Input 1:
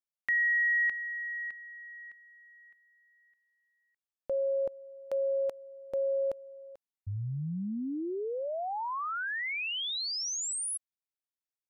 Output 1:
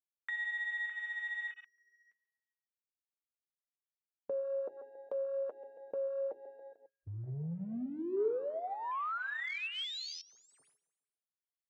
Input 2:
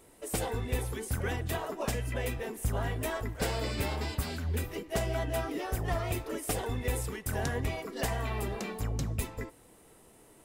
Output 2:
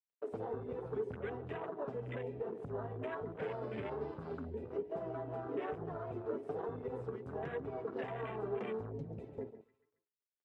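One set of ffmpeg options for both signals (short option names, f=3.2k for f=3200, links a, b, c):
-af "aeval=exprs='sgn(val(0))*max(abs(val(0))-0.00376,0)':c=same,aecho=1:1:138|276|414|552:0.141|0.0706|0.0353|0.0177,flanger=delay=5.7:depth=3.3:regen=39:speed=1.2:shape=triangular,alimiter=level_in=8.5dB:limit=-24dB:level=0:latency=1:release=236,volume=-8.5dB,lowpass=2.7k,bandreject=f=60:t=h:w=6,bandreject=f=120:t=h:w=6,bandreject=f=180:t=h:w=6,bandreject=f=240:t=h:w=6,bandreject=f=300:t=h:w=6,bandreject=f=360:t=h:w=6,bandreject=f=420:t=h:w=6,acompressor=threshold=-43dB:ratio=5:attack=0.61:release=583:knee=6:detection=peak,highpass=130,equalizer=f=420:w=5.8:g=10,afwtdn=0.002,volume=8.5dB"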